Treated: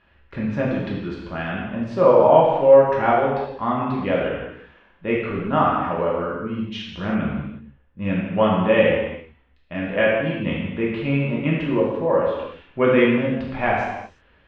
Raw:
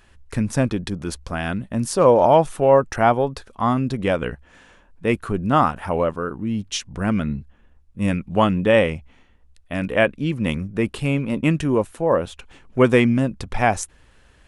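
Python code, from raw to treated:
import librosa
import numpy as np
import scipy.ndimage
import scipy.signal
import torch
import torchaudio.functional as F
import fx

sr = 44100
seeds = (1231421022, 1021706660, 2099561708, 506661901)

y = scipy.signal.sosfilt(scipy.signal.butter(4, 3300.0, 'lowpass', fs=sr, output='sos'), x)
y = fx.low_shelf(y, sr, hz=63.0, db=-11.0)
y = fx.rev_gated(y, sr, seeds[0], gate_ms=390, shape='falling', drr_db=-5.0)
y = y * 10.0 ** (-6.0 / 20.0)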